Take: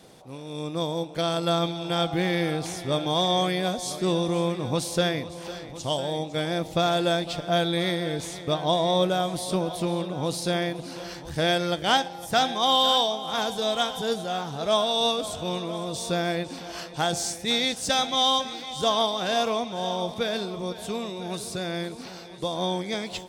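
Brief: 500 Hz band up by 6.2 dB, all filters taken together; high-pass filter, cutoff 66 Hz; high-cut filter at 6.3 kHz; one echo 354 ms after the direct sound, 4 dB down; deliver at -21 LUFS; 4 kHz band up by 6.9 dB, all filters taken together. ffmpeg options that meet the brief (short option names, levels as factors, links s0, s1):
-af "highpass=66,lowpass=6300,equalizer=f=500:t=o:g=7.5,equalizer=f=4000:t=o:g=8.5,aecho=1:1:354:0.631,volume=0.841"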